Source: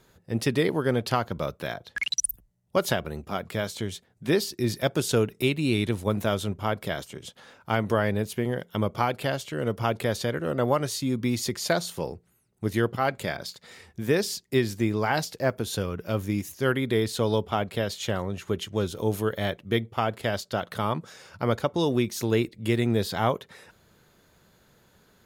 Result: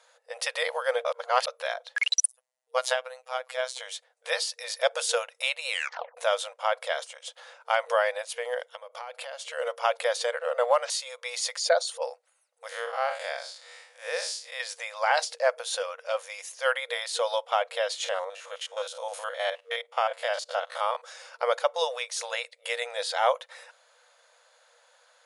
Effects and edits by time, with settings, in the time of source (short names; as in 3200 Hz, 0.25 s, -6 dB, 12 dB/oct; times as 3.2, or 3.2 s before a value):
1.05–1.47 reverse
2.28–3.8 robotiser 128 Hz
5.69 tape stop 0.48 s
8.7–9.43 compressor 16:1, threshold -34 dBFS
10.25–10.9 decimation joined by straight lines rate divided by 4×
11.58–12.02 formant sharpening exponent 1.5
12.69–14.6 time blur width 0.128 s
18.04–21.03 stepped spectrum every 50 ms
22.35–23.28 notch 1100 Hz
whole clip: FFT band-pass 470–11000 Hz; gain +2.5 dB